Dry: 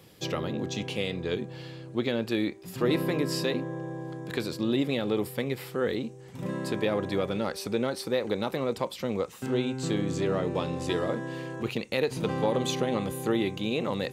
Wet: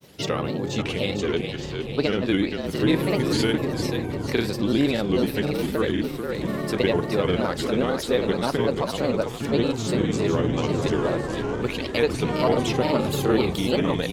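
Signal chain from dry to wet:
echo with shifted repeats 460 ms, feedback 55%, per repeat −34 Hz, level −6 dB
granular cloud, spray 34 ms, pitch spread up and down by 3 semitones
level +6 dB

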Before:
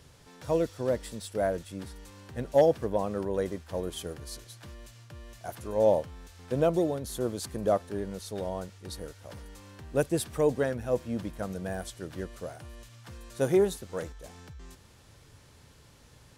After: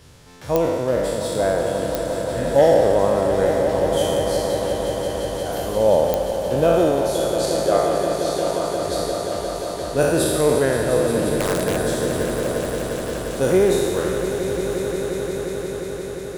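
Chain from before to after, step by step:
peak hold with a decay on every bin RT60 1.76 s
0:07.01–0:08.75: meter weighting curve A
0:11.30–0:11.76: wrap-around overflow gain 22 dB
echo that builds up and dies away 176 ms, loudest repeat 5, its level −11 dB
digital clicks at 0:00.56/0:01.95/0:06.14, −11 dBFS
level +5 dB

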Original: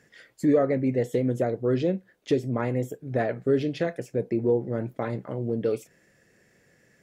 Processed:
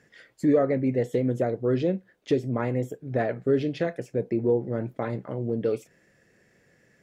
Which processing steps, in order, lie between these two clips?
high-shelf EQ 6,700 Hz −6.5 dB

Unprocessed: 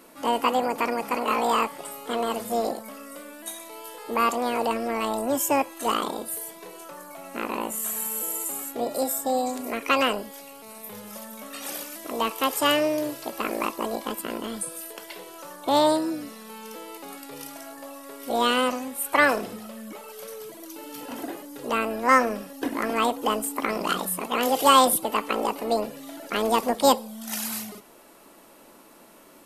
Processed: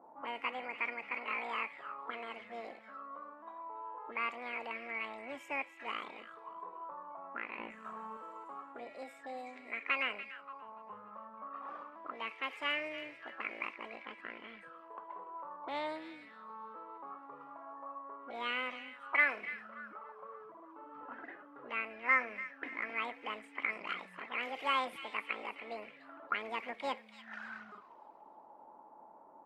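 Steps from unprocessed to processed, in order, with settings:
low-pass that shuts in the quiet parts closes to 1,300 Hz, open at −21.5 dBFS
spectral tilt −4 dB per octave
delay with a high-pass on its return 289 ms, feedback 46%, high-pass 1,900 Hz, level −11 dB
envelope filter 790–2,200 Hz, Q 7.5, up, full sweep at −22.5 dBFS
0:07.59–0:08.17: low-shelf EQ 400 Hz +10.5 dB
level +5.5 dB

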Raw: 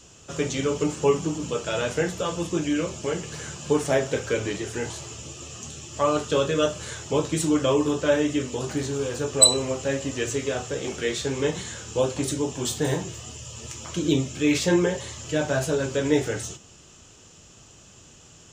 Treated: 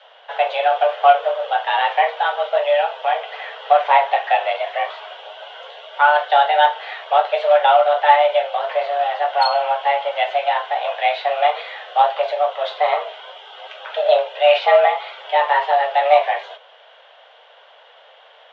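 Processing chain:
notch filter 940 Hz, Q 29
in parallel at −4 dB: log-companded quantiser 4 bits
on the sum: single-sideband voice off tune +290 Hz 240–3,100 Hz
level +4.5 dB

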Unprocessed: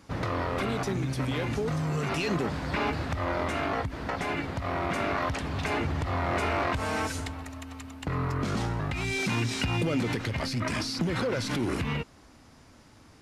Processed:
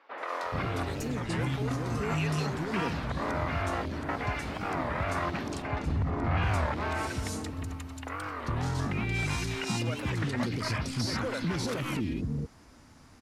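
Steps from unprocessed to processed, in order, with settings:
0:05.44–0:06.25: spectral tilt −2.5 dB per octave
brickwall limiter −21.5 dBFS, peak gain reduction 8.5 dB
three-band delay without the direct sound mids, highs, lows 180/430 ms, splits 460/3,200 Hz
wow of a warped record 33 1/3 rpm, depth 250 cents

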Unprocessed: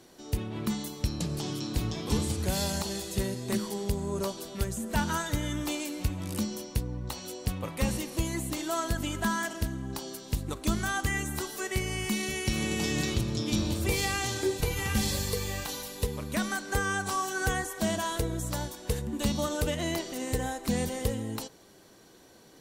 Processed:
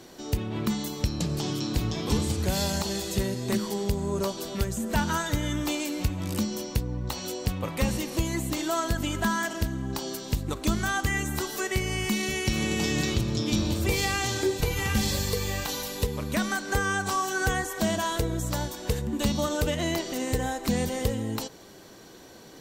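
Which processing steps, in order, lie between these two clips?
parametric band 10,000 Hz −7 dB 0.35 octaves
in parallel at +2.5 dB: downward compressor, threshold −37 dBFS, peak gain reduction 14.5 dB

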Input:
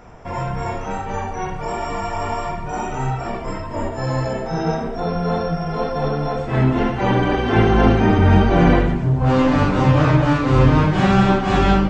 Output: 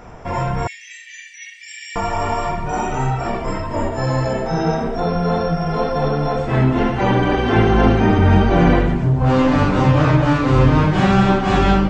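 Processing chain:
0:00.67–0:01.96: Chebyshev high-pass filter 1,800 Hz, order 8
in parallel at +0.5 dB: downward compressor, threshold −21 dBFS, peak gain reduction 12.5 dB
on the sum: level −2 dB

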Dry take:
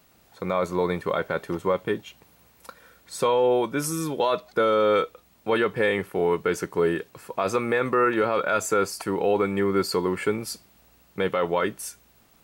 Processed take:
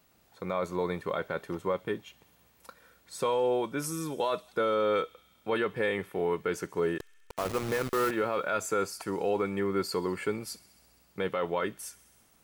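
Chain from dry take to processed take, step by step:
0:06.98–0:08.11: hold until the input has moved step −24.5 dBFS
delay with a high-pass on its return 66 ms, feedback 81%, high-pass 3,000 Hz, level −20.5 dB
level −6.5 dB

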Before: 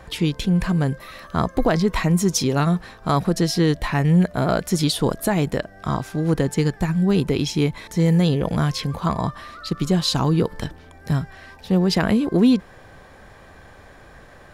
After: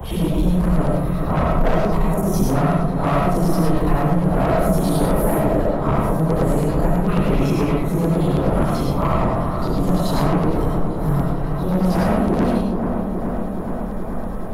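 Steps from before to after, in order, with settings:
random phases in long frames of 200 ms
0:07.08–0:07.76: gain on a spectral selection 970–2,900 Hz +10 dB
flat-topped bell 3,600 Hz −14 dB 2.7 octaves
harmonic and percussive parts rebalanced percussive +9 dB
low-shelf EQ 76 Hz +10 dB
0:01.79–0:02.23: output level in coarse steps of 19 dB
gain into a clipping stage and back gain 14.5 dB
auto-filter notch square 9.2 Hz 330–4,700 Hz
soft clipping −15.5 dBFS, distortion −19 dB
delay with a low-pass on its return 424 ms, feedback 69%, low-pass 1,400 Hz, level −8 dB
comb and all-pass reverb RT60 0.43 s, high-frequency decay 0.35×, pre-delay 55 ms, DRR 0 dB
multiband upward and downward compressor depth 40%

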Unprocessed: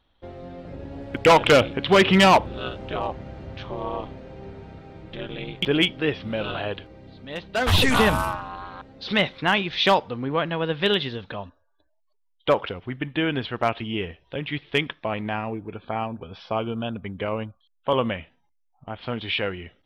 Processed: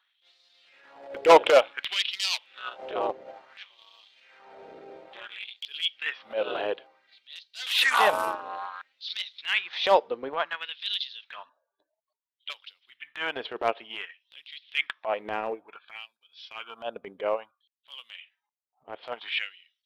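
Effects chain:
auto-filter high-pass sine 0.57 Hz 410–4,400 Hz
transient designer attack −11 dB, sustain −7 dB
level −2 dB

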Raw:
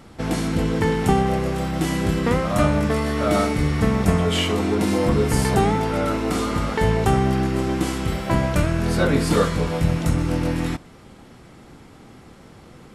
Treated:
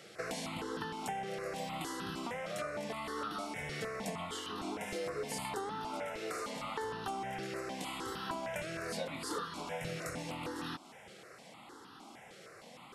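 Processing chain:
meter weighting curve A
downward compressor, threshold −34 dBFS, peak gain reduction 16 dB
step-sequenced phaser 6.5 Hz 260–2,200 Hz

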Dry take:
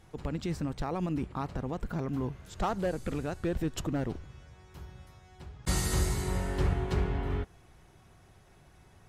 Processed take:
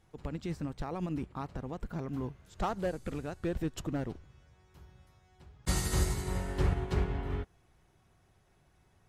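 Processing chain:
expander for the loud parts 1.5 to 1, over −42 dBFS

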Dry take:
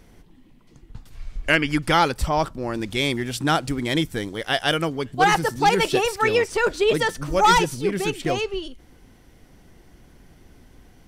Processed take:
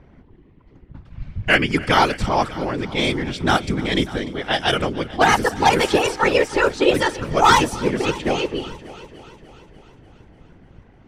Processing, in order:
random phases in short frames
low-pass that shuts in the quiet parts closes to 1,900 Hz, open at −15 dBFS
echo machine with several playback heads 296 ms, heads first and second, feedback 48%, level −20.5 dB
level +2.5 dB

